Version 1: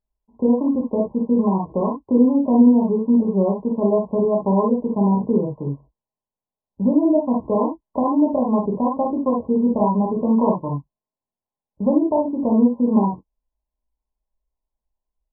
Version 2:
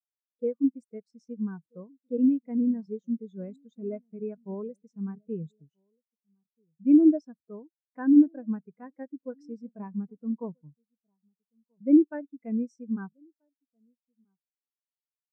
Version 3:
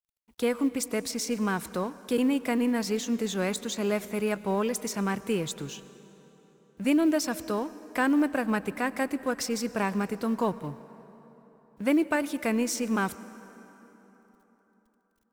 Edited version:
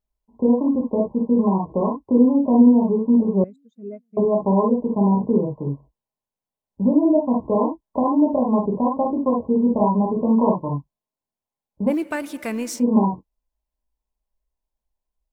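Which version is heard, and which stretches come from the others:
1
3.44–4.17 s: from 2
11.91–12.79 s: from 3, crossfade 0.10 s

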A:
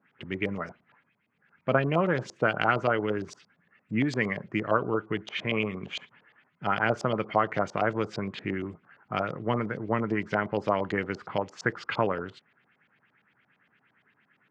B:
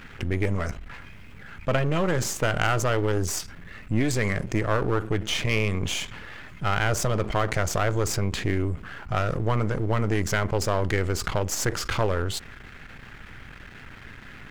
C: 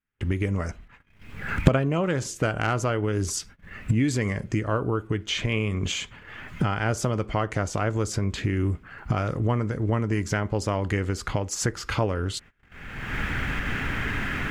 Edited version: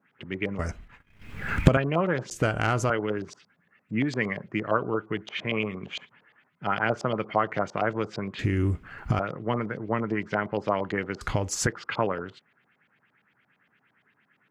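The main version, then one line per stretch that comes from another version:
A
0.59–1.77 s: from C
2.31–2.90 s: from C
8.39–9.19 s: from C
11.21–11.67 s: from C
not used: B

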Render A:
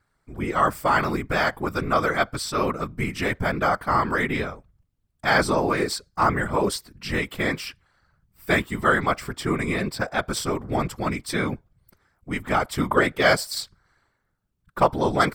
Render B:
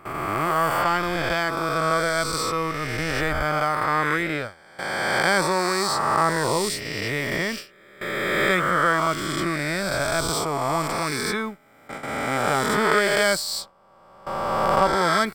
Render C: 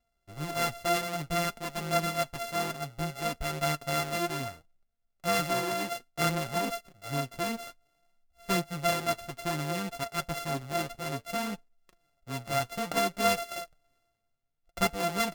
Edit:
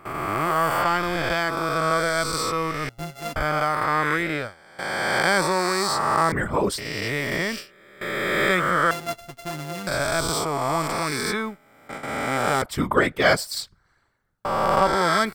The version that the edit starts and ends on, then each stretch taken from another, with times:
B
2.89–3.36 s: from C
6.32–6.78 s: from A
8.91–9.87 s: from C
12.62–14.45 s: from A

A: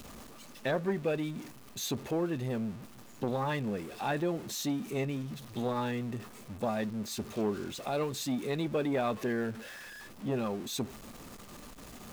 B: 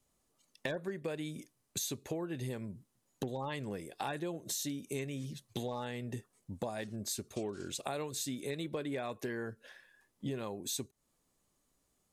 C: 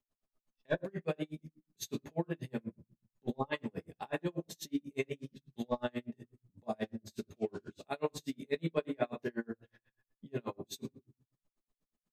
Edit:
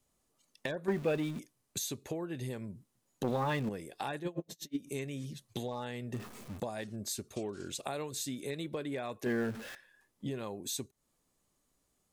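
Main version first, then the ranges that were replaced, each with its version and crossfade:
B
0.88–1.39 s: from A
3.24–3.69 s: from A
4.24–4.83 s: from C, crossfade 0.24 s
6.14–6.60 s: from A
9.26–9.75 s: from A

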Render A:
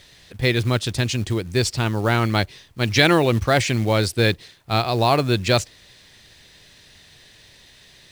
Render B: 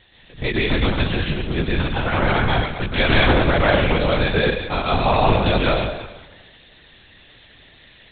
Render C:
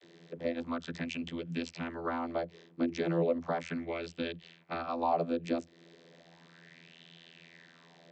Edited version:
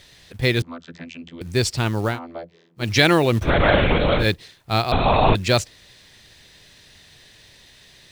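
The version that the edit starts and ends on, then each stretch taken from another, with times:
A
0.62–1.41 s: from C
2.12–2.82 s: from C, crossfade 0.16 s
3.46–4.23 s: from B, crossfade 0.10 s
4.92–5.35 s: from B

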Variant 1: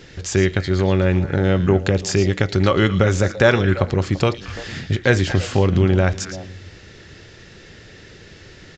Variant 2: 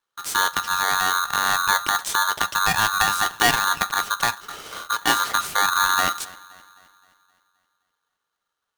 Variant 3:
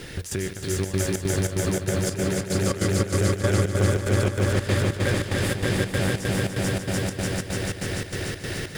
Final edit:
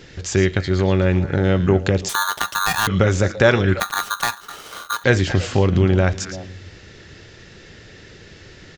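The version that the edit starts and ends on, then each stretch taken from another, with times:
1
2.09–2.87 s: from 2
3.80–5.04 s: from 2
not used: 3

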